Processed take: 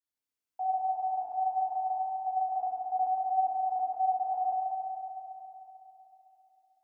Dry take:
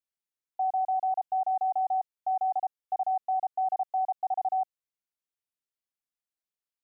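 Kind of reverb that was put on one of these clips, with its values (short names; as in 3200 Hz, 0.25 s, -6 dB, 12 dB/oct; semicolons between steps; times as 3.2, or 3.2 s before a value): FDN reverb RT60 3.4 s, high-frequency decay 0.95×, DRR -7.5 dB; gain -6.5 dB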